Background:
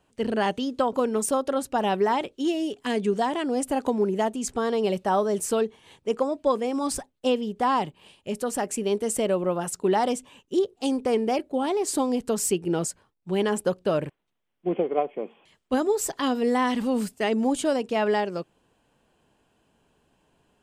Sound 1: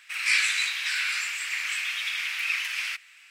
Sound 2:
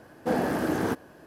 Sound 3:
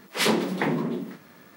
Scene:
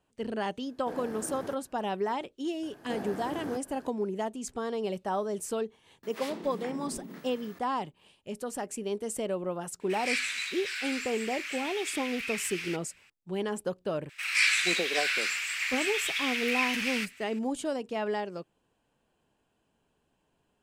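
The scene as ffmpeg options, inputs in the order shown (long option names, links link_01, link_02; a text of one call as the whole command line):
ffmpeg -i bed.wav -i cue0.wav -i cue1.wav -i cue2.wav -filter_complex "[2:a]asplit=2[link_01][link_02];[1:a]asplit=2[link_03][link_04];[0:a]volume=-8dB[link_05];[link_02]acompressor=mode=upward:threshold=-34dB:ratio=2.5:attack=17:release=135:knee=2.83:detection=peak[link_06];[3:a]acompressor=threshold=-38dB:ratio=6:attack=3.2:release=140:knee=1:detection=peak[link_07];[link_01]atrim=end=1.26,asetpts=PTS-STARTPTS,volume=-14.5dB,afade=type=in:duration=0.1,afade=type=out:start_time=1.16:duration=0.1,adelay=600[link_08];[link_06]atrim=end=1.26,asetpts=PTS-STARTPTS,volume=-12dB,afade=type=in:duration=0.004:curve=hsin,afade=type=out:start_time=1.256:duration=0.004:curve=hsin,adelay=2630[link_09];[link_07]atrim=end=1.56,asetpts=PTS-STARTPTS,volume=-1dB,afade=type=in:duration=0.004:curve=hsin,afade=type=out:start_time=1.556:duration=0.004:curve=hsin,adelay=6030[link_10];[link_03]atrim=end=3.3,asetpts=PTS-STARTPTS,volume=-8dB,afade=type=in:duration=0.004:curve=hsin,afade=type=out:start_time=3.296:duration=0.004:curve=hsin,adelay=9800[link_11];[link_04]atrim=end=3.3,asetpts=PTS-STARTPTS,volume=-1.5dB,afade=type=in:duration=0.004:curve=hsin,afade=type=out:start_time=3.296:duration=0.004:curve=hsin,adelay=14090[link_12];[link_05][link_08][link_09][link_10][link_11][link_12]amix=inputs=6:normalize=0" out.wav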